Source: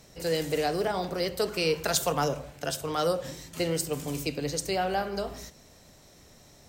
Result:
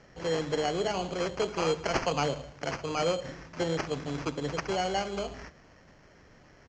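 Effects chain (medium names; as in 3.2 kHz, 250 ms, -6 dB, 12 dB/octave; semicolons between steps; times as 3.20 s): sample-and-hold 12×; resampled via 16 kHz; trim -1.5 dB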